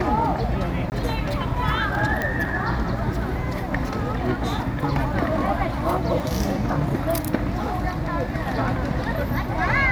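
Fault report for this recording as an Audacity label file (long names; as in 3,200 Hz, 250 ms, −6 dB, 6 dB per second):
0.900000	0.920000	drop-out 19 ms
2.220000	2.220000	click −11 dBFS
6.200000	6.200000	drop-out 2.3 ms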